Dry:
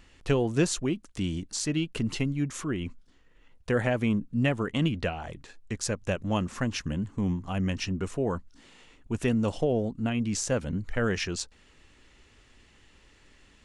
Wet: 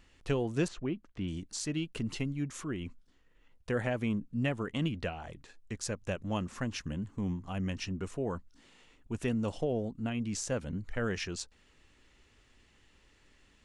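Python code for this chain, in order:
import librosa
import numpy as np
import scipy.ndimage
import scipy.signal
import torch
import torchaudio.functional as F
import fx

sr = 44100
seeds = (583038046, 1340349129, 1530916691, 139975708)

y = fx.lowpass(x, sr, hz=2600.0, slope=12, at=(0.68, 1.28))
y = y * librosa.db_to_amplitude(-6.0)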